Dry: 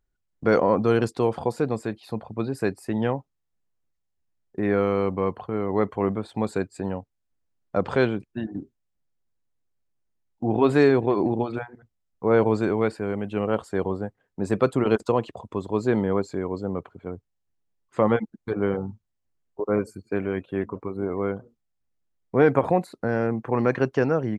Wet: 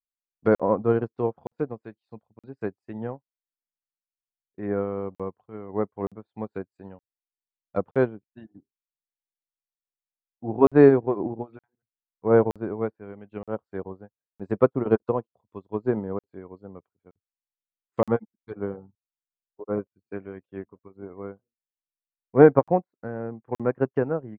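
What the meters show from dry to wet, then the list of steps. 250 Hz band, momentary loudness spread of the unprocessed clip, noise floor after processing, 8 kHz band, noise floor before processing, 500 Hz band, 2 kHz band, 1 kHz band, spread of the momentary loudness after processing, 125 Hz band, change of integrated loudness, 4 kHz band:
-2.5 dB, 13 LU, under -85 dBFS, no reading, -77 dBFS, -0.5 dB, -6.0 dB, -3.0 dB, 21 LU, -3.0 dB, 0.0 dB, under -15 dB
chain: low-pass that closes with the level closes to 1.2 kHz, closed at -20 dBFS; crackling interface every 0.92 s, samples 2048, zero, from 0.55 s; upward expansion 2.5:1, over -41 dBFS; trim +6 dB

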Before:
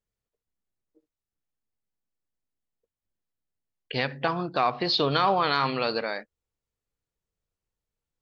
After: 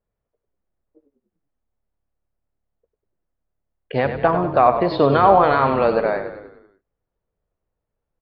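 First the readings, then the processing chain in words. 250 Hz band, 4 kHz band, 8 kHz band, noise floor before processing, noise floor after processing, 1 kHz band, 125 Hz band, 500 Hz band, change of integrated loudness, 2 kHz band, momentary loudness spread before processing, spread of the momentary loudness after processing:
+9.0 dB, -8.0 dB, no reading, under -85 dBFS, -82 dBFS, +9.5 dB, +8.5 dB, +12.0 dB, +8.5 dB, +4.0 dB, 10 LU, 11 LU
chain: low-pass 1.5 kHz 12 dB/octave; peaking EQ 620 Hz +5.5 dB 0.68 oct; frequency-shifting echo 97 ms, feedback 53%, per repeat -36 Hz, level -9 dB; trim +7.5 dB

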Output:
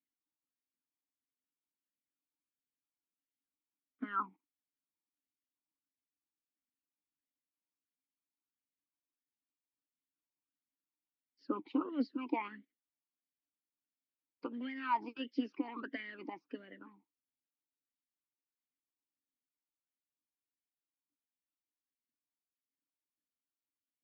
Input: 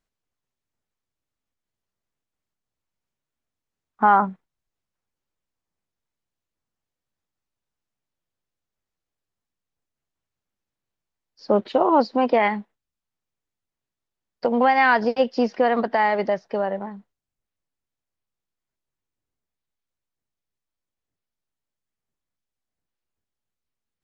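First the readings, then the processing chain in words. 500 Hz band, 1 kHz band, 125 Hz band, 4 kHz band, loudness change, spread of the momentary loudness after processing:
-26.5 dB, -21.0 dB, no reading, -16.0 dB, -19.0 dB, 15 LU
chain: harmonic-percussive split harmonic -14 dB; talking filter i-u 1.5 Hz; trim +2 dB

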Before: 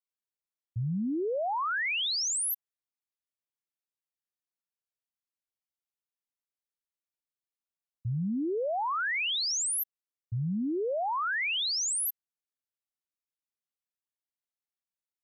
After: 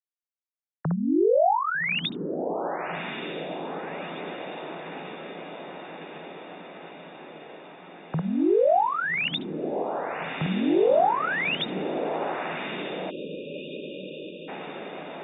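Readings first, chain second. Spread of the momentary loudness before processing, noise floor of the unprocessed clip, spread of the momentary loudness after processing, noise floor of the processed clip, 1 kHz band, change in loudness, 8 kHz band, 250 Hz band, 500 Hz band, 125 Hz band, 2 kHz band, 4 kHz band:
9 LU, under -85 dBFS, 20 LU, under -85 dBFS, +8.5 dB, +2.5 dB, under -40 dB, +7.5 dB, +11.5 dB, +1.5 dB, +4.0 dB, -1.5 dB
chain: formants replaced by sine waves; echo that smears into a reverb 1214 ms, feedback 68%, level -8 dB; spectral selection erased 13.10–14.48 s, 610–2400 Hz; trim +5.5 dB

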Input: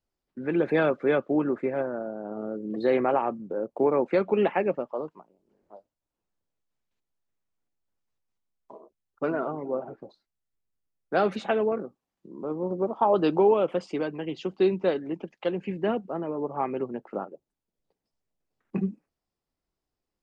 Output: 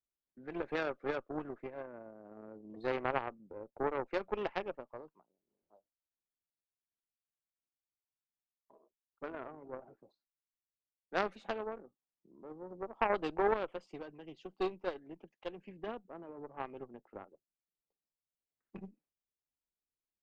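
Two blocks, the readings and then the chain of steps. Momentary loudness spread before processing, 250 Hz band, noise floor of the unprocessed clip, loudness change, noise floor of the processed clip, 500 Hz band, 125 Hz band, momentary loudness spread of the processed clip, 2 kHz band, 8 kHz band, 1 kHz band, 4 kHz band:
12 LU, -16.0 dB, under -85 dBFS, -12.0 dB, under -85 dBFS, -13.5 dB, -15.5 dB, 18 LU, -7.0 dB, no reading, -9.5 dB, -8.0 dB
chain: Chebyshev shaper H 2 -14 dB, 3 -12 dB, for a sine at -11 dBFS; dynamic bell 190 Hz, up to -5 dB, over -42 dBFS, Q 0.87; trim -6 dB

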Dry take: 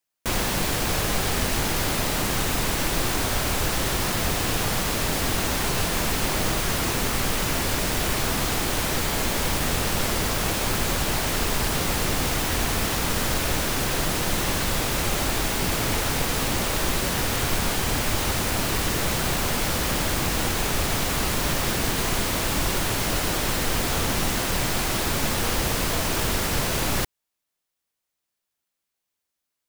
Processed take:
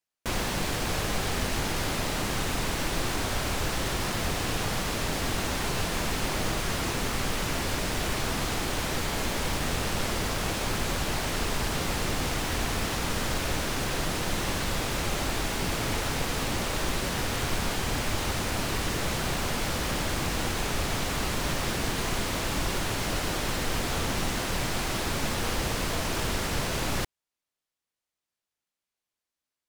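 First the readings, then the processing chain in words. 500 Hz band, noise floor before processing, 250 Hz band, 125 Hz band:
-4.0 dB, -83 dBFS, -4.0 dB, -4.0 dB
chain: treble shelf 12 kHz -11.5 dB; trim -4 dB

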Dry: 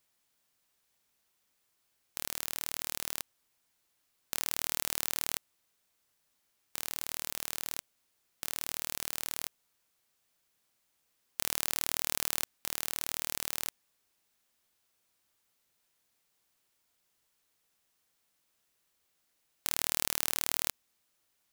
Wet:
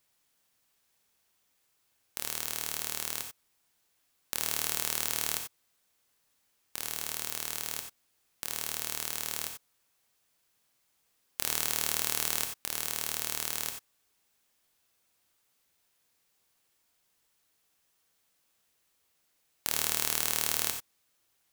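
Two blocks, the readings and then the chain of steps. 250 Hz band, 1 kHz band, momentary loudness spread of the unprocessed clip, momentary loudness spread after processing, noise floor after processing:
+2.0 dB, +2.5 dB, 10 LU, 11 LU, -74 dBFS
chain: gated-style reverb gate 110 ms rising, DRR 5 dB; trim +1.5 dB

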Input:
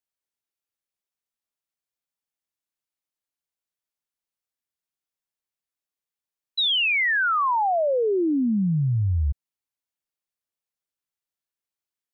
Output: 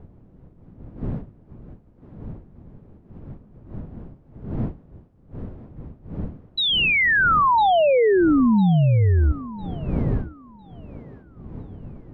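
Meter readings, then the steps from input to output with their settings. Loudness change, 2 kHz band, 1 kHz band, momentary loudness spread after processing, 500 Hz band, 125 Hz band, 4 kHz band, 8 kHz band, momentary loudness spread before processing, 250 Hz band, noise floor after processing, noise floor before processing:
+3.0 dB, +3.5 dB, +5.0 dB, 22 LU, +5.5 dB, +6.0 dB, +1.5 dB, no reading, 8 LU, +6.0 dB, -52 dBFS, under -85 dBFS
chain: wind noise 180 Hz -39 dBFS; low-pass 2.5 kHz 6 dB/octave; thinning echo 1003 ms, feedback 29%, high-pass 220 Hz, level -14.5 dB; trim +5.5 dB

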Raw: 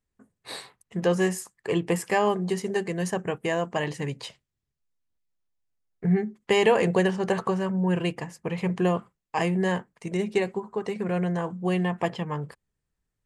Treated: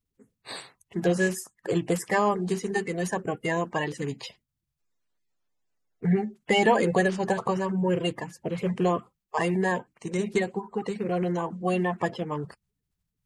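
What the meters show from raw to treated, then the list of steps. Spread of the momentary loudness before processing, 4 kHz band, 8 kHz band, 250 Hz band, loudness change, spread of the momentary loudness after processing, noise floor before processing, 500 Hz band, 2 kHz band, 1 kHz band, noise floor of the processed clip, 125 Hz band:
10 LU, -1.0 dB, 0.0 dB, -1.0 dB, -0.5 dB, 11 LU, -84 dBFS, -1.0 dB, +1.0 dB, +1.5 dB, -83 dBFS, -1.5 dB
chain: coarse spectral quantiser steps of 30 dB

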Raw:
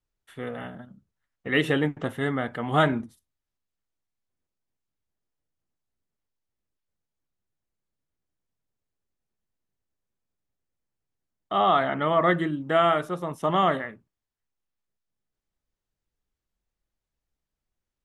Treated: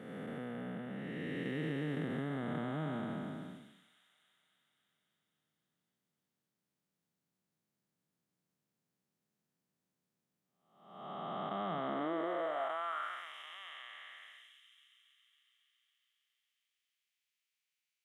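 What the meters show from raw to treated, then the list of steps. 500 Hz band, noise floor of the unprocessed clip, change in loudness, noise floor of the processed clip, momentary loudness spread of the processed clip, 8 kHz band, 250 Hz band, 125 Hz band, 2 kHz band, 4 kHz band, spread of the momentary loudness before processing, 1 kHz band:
-14.5 dB, under -85 dBFS, -15.5 dB, under -85 dBFS, 15 LU, no reading, -10.5 dB, -11.0 dB, -15.0 dB, -14.5 dB, 15 LU, -15.5 dB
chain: spectral blur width 661 ms; feedback echo behind a high-pass 276 ms, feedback 67%, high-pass 4.4 kHz, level -12.5 dB; compression 2.5:1, threshold -47 dBFS, peak gain reduction 16 dB; high-pass sweep 170 Hz -> 2.4 kHz, 11.74–13.36 s; trim +3 dB

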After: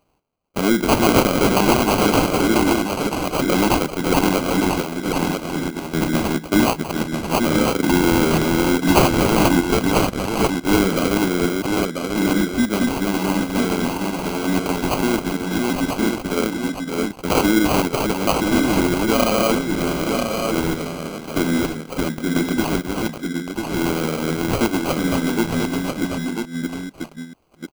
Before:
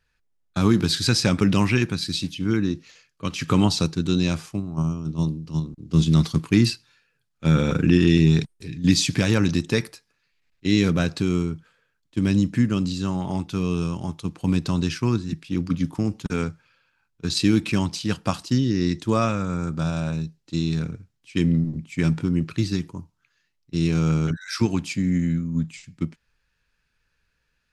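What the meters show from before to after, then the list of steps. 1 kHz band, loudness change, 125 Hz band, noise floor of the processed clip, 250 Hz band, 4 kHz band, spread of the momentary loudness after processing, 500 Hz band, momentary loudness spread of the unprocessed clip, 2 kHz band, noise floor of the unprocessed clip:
+12.5 dB, +3.5 dB, -4.0 dB, -37 dBFS, +3.5 dB, +3.5 dB, 9 LU, +9.5 dB, 11 LU, +8.5 dB, -73 dBFS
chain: chunks repeated in reverse 439 ms, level -2.5 dB; high-pass 240 Hz 24 dB/octave; treble shelf 3.1 kHz +9 dB; in parallel at 0 dB: peak limiter -14 dBFS, peak gain reduction 11 dB; on the sum: sample-rate reducer 1.8 kHz, jitter 0%; on a send: delay 991 ms -5 dB; on the sum: trim -1 dB

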